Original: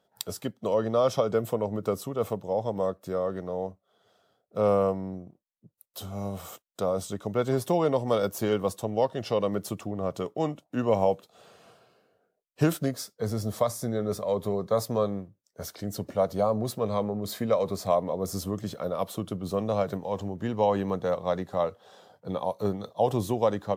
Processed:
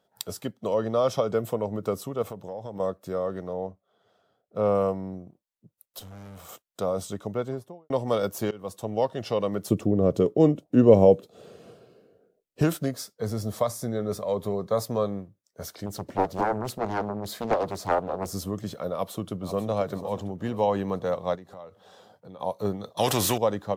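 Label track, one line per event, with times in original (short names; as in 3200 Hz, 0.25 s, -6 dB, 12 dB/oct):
2.220000	2.800000	compressor 4:1, threshold -33 dBFS
3.530000	4.750000	high shelf 4000 Hz -9 dB
5.990000	6.490000	tube stage drive 41 dB, bias 0.65
7.140000	7.900000	studio fade out
8.510000	8.920000	fade in, from -23 dB
9.700000	12.620000	resonant low shelf 610 Hz +9.5 dB, Q 1.5
15.860000	18.320000	Doppler distortion depth 0.98 ms
18.930000	19.690000	echo throw 0.49 s, feedback 50%, level -11.5 dB
21.350000	22.400000	compressor 3:1, threshold -45 dBFS
22.970000	23.380000	spectral compressor 2:1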